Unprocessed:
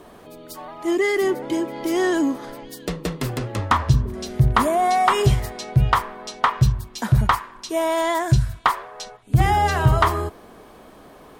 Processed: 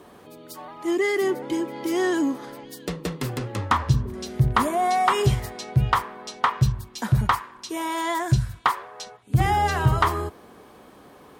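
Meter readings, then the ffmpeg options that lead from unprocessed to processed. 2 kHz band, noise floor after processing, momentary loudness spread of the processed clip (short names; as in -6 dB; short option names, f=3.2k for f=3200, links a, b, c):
-2.5 dB, -49 dBFS, 13 LU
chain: -af "highpass=63,bandreject=f=650:w=12,volume=-2.5dB"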